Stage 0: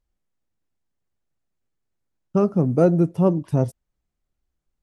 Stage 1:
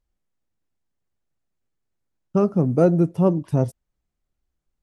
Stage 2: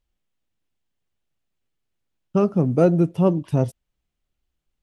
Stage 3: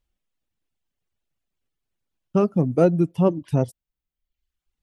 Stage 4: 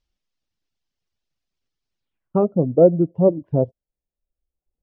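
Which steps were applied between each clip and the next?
nothing audible
bell 3000 Hz +7.5 dB 0.87 oct
reverb removal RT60 0.9 s
low-pass sweep 5300 Hz -> 570 Hz, 1.98–2.48; gain -1 dB

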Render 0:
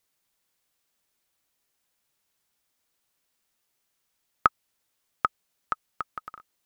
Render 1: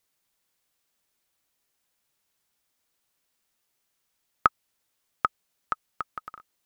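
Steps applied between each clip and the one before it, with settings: nothing audible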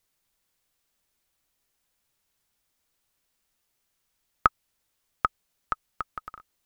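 low shelf 77 Hz +11.5 dB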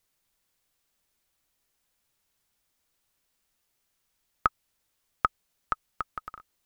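limiter -6.5 dBFS, peak gain reduction 4 dB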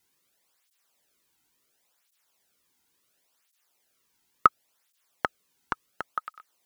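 tape flanging out of phase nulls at 0.71 Hz, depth 1.8 ms; gain +7 dB

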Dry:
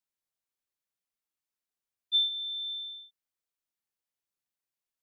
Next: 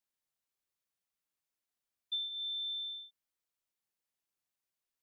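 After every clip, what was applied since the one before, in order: compressor, threshold -36 dBFS, peak gain reduction 12.5 dB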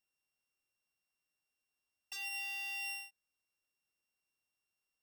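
sample sorter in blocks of 16 samples; wavefolder -38.5 dBFS; gain +1 dB

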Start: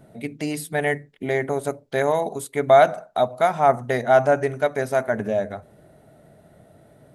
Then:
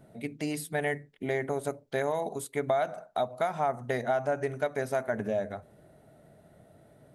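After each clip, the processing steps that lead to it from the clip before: compressor 6:1, threshold -19 dBFS, peak gain reduction 10 dB; gain -5.5 dB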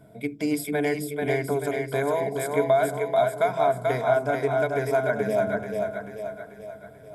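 ripple EQ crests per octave 1.7, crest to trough 11 dB; split-band echo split 370 Hz, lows 0.268 s, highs 0.437 s, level -3.5 dB; gain +2 dB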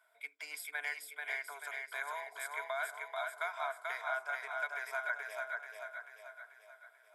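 HPF 1200 Hz 24 dB/oct; high shelf 2000 Hz -12 dB; gain +1 dB

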